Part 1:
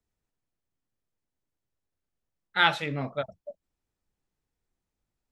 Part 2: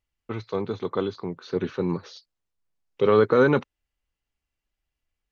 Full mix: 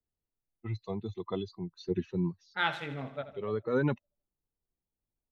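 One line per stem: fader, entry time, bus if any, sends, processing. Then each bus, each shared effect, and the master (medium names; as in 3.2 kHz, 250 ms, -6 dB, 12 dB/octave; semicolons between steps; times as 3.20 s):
-7.0 dB, 0.00 s, no send, echo send -13.5 dB, level-controlled noise filter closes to 920 Hz, open at -24.5 dBFS; treble shelf 3.7 kHz -6.5 dB
-1.0 dB, 0.35 s, no send, no echo send, expander on every frequency bin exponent 2; bass shelf 190 Hz +9.5 dB; auto duck -15 dB, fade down 0.45 s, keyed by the first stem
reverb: none
echo: feedback delay 80 ms, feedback 58%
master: none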